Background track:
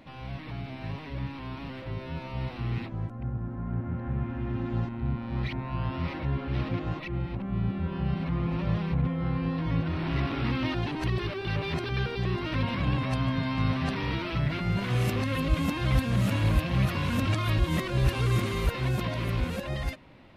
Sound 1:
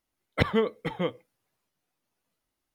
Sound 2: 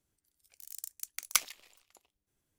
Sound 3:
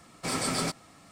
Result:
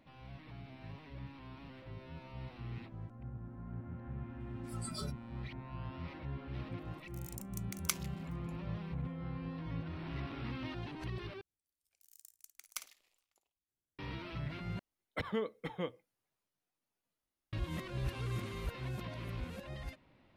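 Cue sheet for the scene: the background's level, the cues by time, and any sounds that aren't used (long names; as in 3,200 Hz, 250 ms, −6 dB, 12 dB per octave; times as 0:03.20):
background track −13 dB
0:04.40: mix in 3 −8.5 dB + noise reduction from a noise print of the clip's start 23 dB
0:06.54: mix in 2 −7.5 dB
0:11.41: overwrite with 2 −16 dB + flutter between parallel walls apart 9.2 metres, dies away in 0.26 s
0:14.79: overwrite with 1 −9.5 dB + brickwall limiter −16.5 dBFS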